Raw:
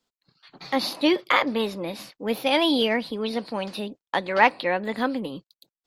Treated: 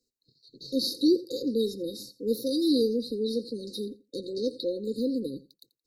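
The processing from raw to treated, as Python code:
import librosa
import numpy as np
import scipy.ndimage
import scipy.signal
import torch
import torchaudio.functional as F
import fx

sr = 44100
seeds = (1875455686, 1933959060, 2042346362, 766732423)

y = fx.brickwall_bandstop(x, sr, low_hz=540.0, high_hz=3700.0)
y = fx.peak_eq(y, sr, hz=180.0, db=-14.5, octaves=0.22)
y = fx.echo_feedback(y, sr, ms=86, feedback_pct=15, wet_db=-19)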